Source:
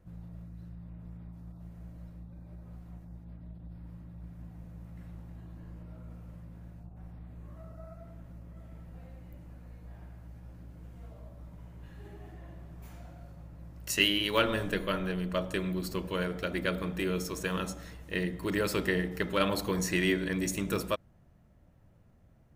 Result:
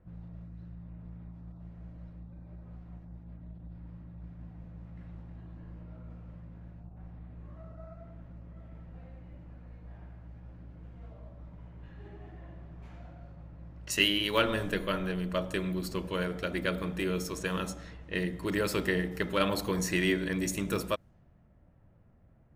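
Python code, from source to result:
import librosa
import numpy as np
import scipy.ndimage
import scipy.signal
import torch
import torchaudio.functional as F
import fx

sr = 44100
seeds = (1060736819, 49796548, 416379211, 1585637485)

y = fx.env_lowpass(x, sr, base_hz=2100.0, full_db=-30.5)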